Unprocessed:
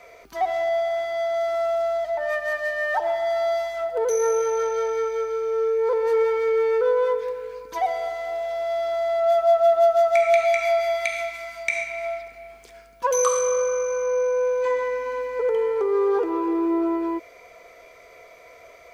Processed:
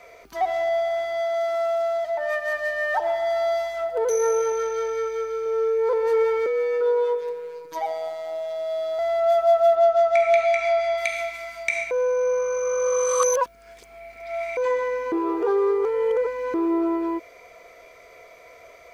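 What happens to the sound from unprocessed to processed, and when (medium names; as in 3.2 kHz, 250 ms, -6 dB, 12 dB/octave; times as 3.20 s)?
1.21–2.56 s: bass shelf 110 Hz -9 dB
4.52–5.46 s: peaking EQ 730 Hz -7.5 dB
6.46–8.99 s: robot voice 161 Hz
9.75–10.98 s: distance through air 68 m
11.91–14.57 s: reverse
15.12–16.54 s: reverse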